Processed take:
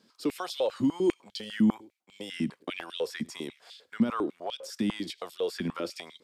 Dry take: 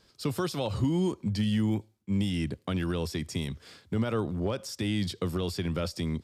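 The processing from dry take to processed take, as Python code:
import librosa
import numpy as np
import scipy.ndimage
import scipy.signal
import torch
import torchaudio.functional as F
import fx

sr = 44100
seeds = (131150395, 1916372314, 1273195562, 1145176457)

y = x + 10.0 ** (-23.5 / 20.0) * np.pad(x, (int(102 * sr / 1000.0), 0))[:len(x)]
y = fx.filter_held_highpass(y, sr, hz=10.0, low_hz=220.0, high_hz=3400.0)
y = F.gain(torch.from_numpy(y), -4.0).numpy()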